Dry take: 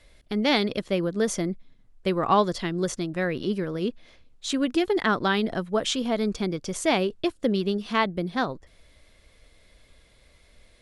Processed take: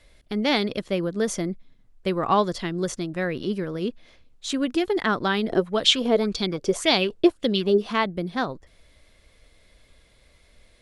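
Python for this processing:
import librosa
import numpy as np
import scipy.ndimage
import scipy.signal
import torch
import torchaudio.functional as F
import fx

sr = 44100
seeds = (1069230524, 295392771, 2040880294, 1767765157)

y = fx.bell_lfo(x, sr, hz=1.8, low_hz=370.0, high_hz=4500.0, db=15, at=(5.49, 7.91), fade=0.02)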